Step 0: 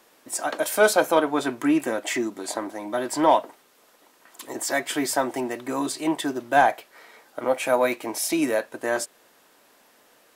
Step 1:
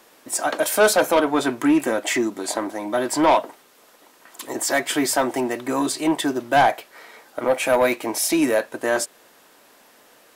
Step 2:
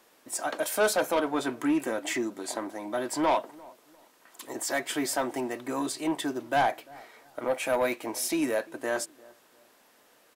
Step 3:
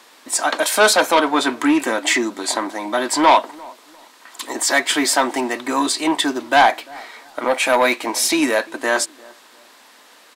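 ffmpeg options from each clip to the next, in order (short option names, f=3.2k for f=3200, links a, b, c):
-af "asoftclip=type=tanh:threshold=-14.5dB,volume=5dB"
-filter_complex "[0:a]asplit=2[a][b];[b]adelay=346,lowpass=f=860:p=1,volume=-21.5dB,asplit=2[c][d];[d]adelay=346,lowpass=f=860:p=1,volume=0.34[e];[a][c][e]amix=inputs=3:normalize=0,volume=-8.5dB"
-af "equalizer=f=125:t=o:w=1:g=-9,equalizer=f=250:t=o:w=1:g=6,equalizer=f=1k:t=o:w=1:g=8,equalizer=f=2k:t=o:w=1:g=6,equalizer=f=4k:t=o:w=1:g=10,equalizer=f=8k:t=o:w=1:g=6,volume=5.5dB"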